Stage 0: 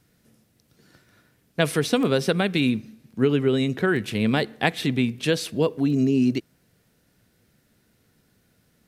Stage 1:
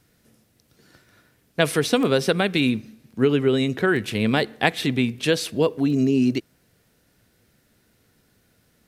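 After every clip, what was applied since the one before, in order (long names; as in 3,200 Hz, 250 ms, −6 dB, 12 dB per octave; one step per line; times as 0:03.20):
parametric band 170 Hz −3.5 dB 1.2 octaves
level +2.5 dB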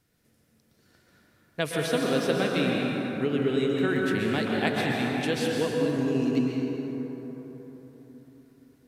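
dense smooth reverb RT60 4.3 s, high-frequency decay 0.4×, pre-delay 110 ms, DRR −2.5 dB
level −9 dB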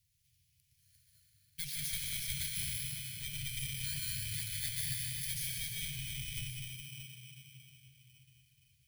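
samples in bit-reversed order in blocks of 16 samples
asymmetric clip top −27.5 dBFS
inverse Chebyshev band-stop filter 220–1,200 Hz, stop band 40 dB
level −2.5 dB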